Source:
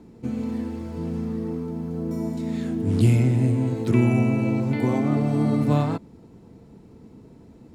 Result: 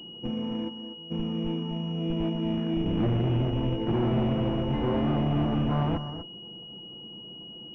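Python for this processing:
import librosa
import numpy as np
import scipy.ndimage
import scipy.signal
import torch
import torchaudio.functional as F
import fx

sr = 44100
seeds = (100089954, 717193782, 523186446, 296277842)

p1 = fx.low_shelf(x, sr, hz=130.0, db=-11.5)
p2 = p1 + 0.51 * np.pad(p1, (int(5.8 * sr / 1000.0), 0))[:len(p1)]
p3 = fx.schmitt(p2, sr, flips_db=-22.0)
p4 = p2 + F.gain(torch.from_numpy(p3), -4.5).numpy()
p5 = fx.comb_fb(p4, sr, f0_hz=480.0, decay_s=0.43, harmonics='all', damping=0.0, mix_pct=90, at=(0.68, 1.1), fade=0.02)
p6 = np.clip(p5, -10.0 ** (-22.5 / 20.0), 10.0 ** (-22.5 / 20.0))
p7 = p6 + fx.echo_single(p6, sr, ms=248, db=-10.0, dry=0)
y = fx.pwm(p7, sr, carrier_hz=2900.0)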